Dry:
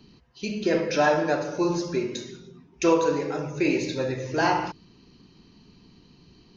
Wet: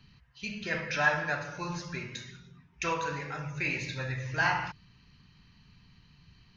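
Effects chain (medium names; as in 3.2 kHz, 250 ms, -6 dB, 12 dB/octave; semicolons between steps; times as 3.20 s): FFT filter 130 Hz 0 dB, 340 Hz -20 dB, 1.8 kHz +3 dB, 4.9 kHz -7 dB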